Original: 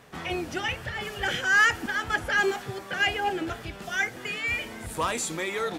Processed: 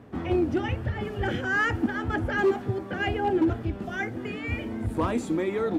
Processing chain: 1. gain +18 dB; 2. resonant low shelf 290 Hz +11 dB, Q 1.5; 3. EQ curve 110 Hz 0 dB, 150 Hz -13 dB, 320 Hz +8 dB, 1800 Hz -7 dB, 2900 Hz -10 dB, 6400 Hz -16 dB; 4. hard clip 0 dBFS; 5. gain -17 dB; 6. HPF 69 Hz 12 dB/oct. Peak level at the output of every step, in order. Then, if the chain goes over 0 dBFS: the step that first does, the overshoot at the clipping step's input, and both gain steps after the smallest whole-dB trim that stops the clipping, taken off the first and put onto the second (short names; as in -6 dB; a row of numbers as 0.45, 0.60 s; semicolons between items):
+4.0, +6.0, +6.0, 0.0, -17.0, -14.0 dBFS; step 1, 6.0 dB; step 1 +12 dB, step 5 -11 dB